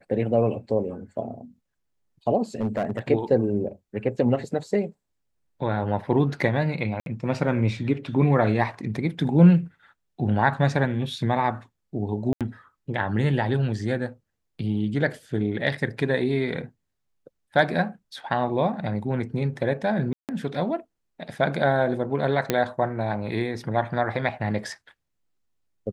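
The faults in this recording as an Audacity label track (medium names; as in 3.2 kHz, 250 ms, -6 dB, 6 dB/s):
2.610000	2.990000	clipped -20.5 dBFS
7.000000	7.060000	dropout 62 ms
12.330000	12.410000	dropout 77 ms
20.130000	20.290000	dropout 158 ms
22.500000	22.500000	pop -7 dBFS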